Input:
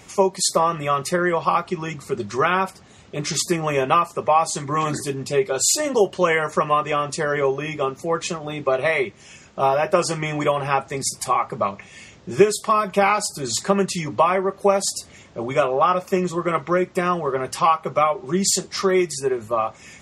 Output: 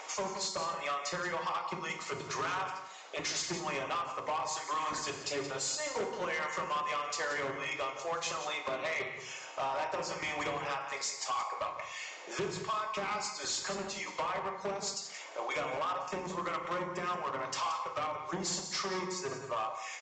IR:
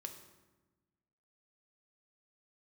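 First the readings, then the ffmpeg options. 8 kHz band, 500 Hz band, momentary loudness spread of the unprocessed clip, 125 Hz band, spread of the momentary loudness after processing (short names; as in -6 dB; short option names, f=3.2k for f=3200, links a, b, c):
-13.0 dB, -17.5 dB, 8 LU, -19.0 dB, 4 LU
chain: -filter_complex "[0:a]acrossover=split=620|1100[a][b][c];[a]acrusher=bits=2:mix=0:aa=0.5[d];[b]acompressor=mode=upward:threshold=-41dB:ratio=2.5[e];[d][e][c]amix=inputs=3:normalize=0,lowshelf=f=360:g=4,acompressor=threshold=-31dB:ratio=5,aecho=1:1:176:0.237[f];[1:a]atrim=start_sample=2205,afade=t=out:st=0.29:d=0.01,atrim=end_sample=13230,asetrate=36603,aresample=44100[g];[f][g]afir=irnorm=-1:irlink=0,aresample=16000,asoftclip=type=hard:threshold=-33.5dB,aresample=44100,highpass=f=100:p=1,volume=3.5dB"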